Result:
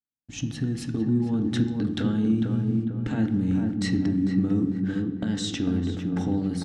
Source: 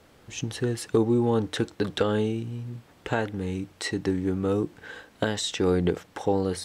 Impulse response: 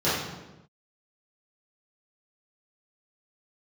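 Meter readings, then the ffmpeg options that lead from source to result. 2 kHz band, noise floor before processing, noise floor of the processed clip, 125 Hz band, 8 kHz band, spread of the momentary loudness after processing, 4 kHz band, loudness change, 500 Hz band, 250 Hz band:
−5.0 dB, −57 dBFS, −41 dBFS, +4.0 dB, can't be measured, 5 LU, −3.0 dB, +1.5 dB, −10.0 dB, +5.0 dB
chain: -filter_complex "[0:a]lowpass=8700,agate=range=-56dB:threshold=-42dB:ratio=16:detection=peak,lowshelf=frequency=340:width_type=q:width=3:gain=8.5,bandreject=frequency=1000:width=7.4,acompressor=threshold=-16dB:ratio=6,alimiter=limit=-17dB:level=0:latency=1:release=262,asplit=2[link_01][link_02];[link_02]adelay=449,lowpass=frequency=1200:poles=1,volume=-3.5dB,asplit=2[link_03][link_04];[link_04]adelay=449,lowpass=frequency=1200:poles=1,volume=0.5,asplit=2[link_05][link_06];[link_06]adelay=449,lowpass=frequency=1200:poles=1,volume=0.5,asplit=2[link_07][link_08];[link_08]adelay=449,lowpass=frequency=1200:poles=1,volume=0.5,asplit=2[link_09][link_10];[link_10]adelay=449,lowpass=frequency=1200:poles=1,volume=0.5,asplit=2[link_11][link_12];[link_12]adelay=449,lowpass=frequency=1200:poles=1,volume=0.5,asplit=2[link_13][link_14];[link_14]adelay=449,lowpass=frequency=1200:poles=1,volume=0.5[link_15];[link_01][link_03][link_05][link_07][link_09][link_11][link_13][link_15]amix=inputs=8:normalize=0,asplit=2[link_16][link_17];[1:a]atrim=start_sample=2205[link_18];[link_17][link_18]afir=irnorm=-1:irlink=0,volume=-23.5dB[link_19];[link_16][link_19]amix=inputs=2:normalize=0,volume=-1.5dB"

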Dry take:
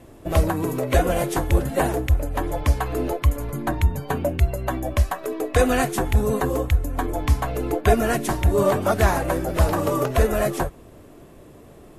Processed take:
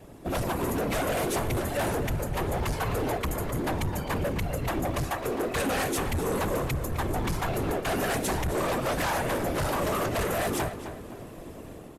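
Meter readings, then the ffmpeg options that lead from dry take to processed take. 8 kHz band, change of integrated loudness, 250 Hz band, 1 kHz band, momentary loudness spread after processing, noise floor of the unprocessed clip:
−2.0 dB, −6.5 dB, −5.5 dB, −4.5 dB, 4 LU, −46 dBFS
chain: -filter_complex "[0:a]acrossover=split=640|1100[link_01][link_02][link_03];[link_01]alimiter=limit=-18.5dB:level=0:latency=1:release=467[link_04];[link_04][link_02][link_03]amix=inputs=3:normalize=0,dynaudnorm=framelen=170:gausssize=5:maxgain=6dB,asplit=2[link_05][link_06];[link_06]acrusher=bits=3:mode=log:mix=0:aa=0.000001,volume=-5dB[link_07];[link_05][link_07]amix=inputs=2:normalize=0,asoftclip=type=tanh:threshold=-14dB,afftfilt=real='hypot(re,im)*cos(2*PI*random(0))':imag='hypot(re,im)*sin(2*PI*random(1))':win_size=512:overlap=0.75,asoftclip=type=hard:threshold=-25dB,asplit=2[link_08][link_09];[link_09]adelay=260,lowpass=frequency=3700:poles=1,volume=-10dB,asplit=2[link_10][link_11];[link_11]adelay=260,lowpass=frequency=3700:poles=1,volume=0.33,asplit=2[link_12][link_13];[link_13]adelay=260,lowpass=frequency=3700:poles=1,volume=0.33,asplit=2[link_14][link_15];[link_15]adelay=260,lowpass=frequency=3700:poles=1,volume=0.33[link_16];[link_08][link_10][link_12][link_14][link_16]amix=inputs=5:normalize=0,aresample=32000,aresample=44100"

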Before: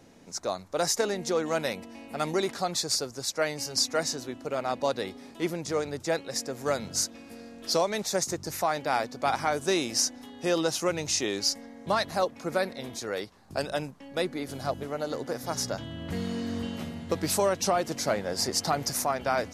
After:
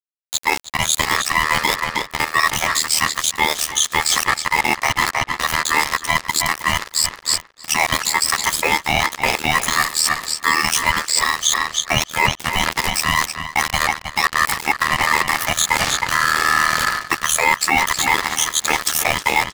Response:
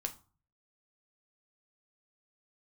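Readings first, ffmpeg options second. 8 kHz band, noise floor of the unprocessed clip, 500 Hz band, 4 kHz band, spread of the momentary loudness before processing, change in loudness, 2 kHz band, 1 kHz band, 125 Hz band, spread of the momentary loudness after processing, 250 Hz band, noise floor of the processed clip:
+12.5 dB, −48 dBFS, −1.5 dB, +12.5 dB, 8 LU, +12.0 dB, +19.5 dB, +13.0 dB, +7.0 dB, 4 LU, +1.5 dB, −42 dBFS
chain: -filter_complex "[0:a]afftfilt=real='re*pow(10,19/40*sin(2*PI*(1.2*log(max(b,1)*sr/1024/100)/log(2)-(1.7)*(pts-256)/sr)))':imag='im*pow(10,19/40*sin(2*PI*(1.2*log(max(b,1)*sr/1024/100)/log(2)-(1.7)*(pts-256)/sr)))':win_size=1024:overlap=0.75,acrossover=split=310[link_01][link_02];[link_02]acrusher=bits=5:mix=0:aa=0.5[link_03];[link_01][link_03]amix=inputs=2:normalize=0,lowshelf=frequency=130:width_type=q:width=1.5:gain=-7.5,aeval=exprs='val(0)*sin(2*PI*1500*n/s)':channel_layout=same,bass=frequency=250:gain=4,treble=frequency=4000:gain=5,dynaudnorm=framelen=270:gausssize=21:maxgain=11dB,tremolo=f=78:d=0.824,aeval=exprs='val(0)+0.00158*(sin(2*PI*60*n/s)+sin(2*PI*2*60*n/s)/2+sin(2*PI*3*60*n/s)/3+sin(2*PI*4*60*n/s)/4+sin(2*PI*5*60*n/s)/5)':channel_layout=same,aeval=exprs='sgn(val(0))*max(abs(val(0))-0.0178,0)':channel_layout=same,asplit=2[link_04][link_05];[link_05]adelay=315,lowpass=frequency=4900:poles=1,volume=-14dB,asplit=2[link_06][link_07];[link_07]adelay=315,lowpass=frequency=4900:poles=1,volume=0.24,asplit=2[link_08][link_09];[link_09]adelay=315,lowpass=frequency=4900:poles=1,volume=0.24[link_10];[link_04][link_06][link_08][link_10]amix=inputs=4:normalize=0,areverse,acompressor=threshold=-34dB:ratio=16,areverse,alimiter=level_in=26.5dB:limit=-1dB:release=50:level=0:latency=1,volume=-2dB"

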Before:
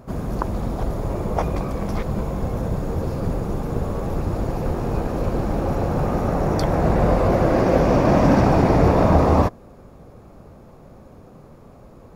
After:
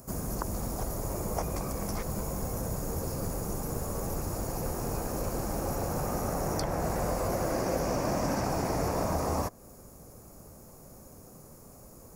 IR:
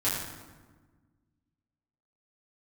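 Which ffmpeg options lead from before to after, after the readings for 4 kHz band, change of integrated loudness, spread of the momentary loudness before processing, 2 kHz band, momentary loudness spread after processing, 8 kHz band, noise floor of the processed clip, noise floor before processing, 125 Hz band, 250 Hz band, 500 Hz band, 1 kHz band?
−4.0 dB, −11.5 dB, 10 LU, −10.0 dB, 20 LU, +6.5 dB, −51 dBFS, −46 dBFS, −13.0 dB, −13.5 dB, −12.0 dB, −10.5 dB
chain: -filter_complex "[0:a]acrossover=split=560|4200[link_01][link_02][link_03];[link_01]acompressor=threshold=-24dB:ratio=4[link_04];[link_02]acompressor=threshold=-25dB:ratio=4[link_05];[link_03]acompressor=threshold=-56dB:ratio=4[link_06];[link_04][link_05][link_06]amix=inputs=3:normalize=0,aexciter=amount=5.4:drive=9.5:freq=5300,volume=-7dB"

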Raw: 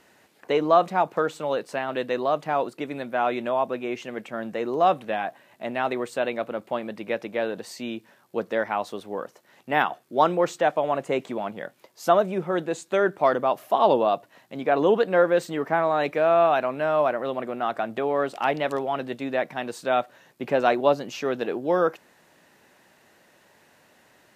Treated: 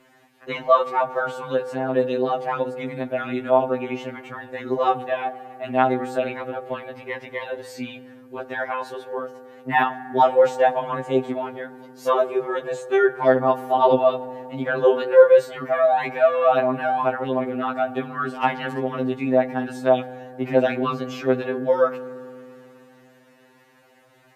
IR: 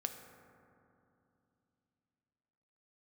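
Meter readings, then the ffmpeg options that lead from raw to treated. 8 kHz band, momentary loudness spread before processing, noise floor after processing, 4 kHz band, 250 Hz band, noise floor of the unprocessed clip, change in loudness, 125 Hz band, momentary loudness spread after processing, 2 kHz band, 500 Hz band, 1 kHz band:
can't be measured, 13 LU, −55 dBFS, −0.5 dB, +2.5 dB, −59 dBFS, +3.0 dB, +3.5 dB, 15 LU, +1.5 dB, +3.5 dB, +1.5 dB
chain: -filter_complex "[0:a]asplit=2[link_01][link_02];[1:a]atrim=start_sample=2205,lowpass=3800[link_03];[link_02][link_03]afir=irnorm=-1:irlink=0,volume=-2dB[link_04];[link_01][link_04]amix=inputs=2:normalize=0,afftfilt=real='re*2.45*eq(mod(b,6),0)':imag='im*2.45*eq(mod(b,6),0)':win_size=2048:overlap=0.75"

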